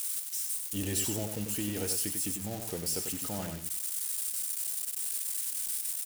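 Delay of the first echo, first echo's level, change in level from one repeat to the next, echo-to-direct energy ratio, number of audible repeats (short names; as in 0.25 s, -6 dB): 95 ms, -6.0 dB, -16.0 dB, -6.0 dB, 2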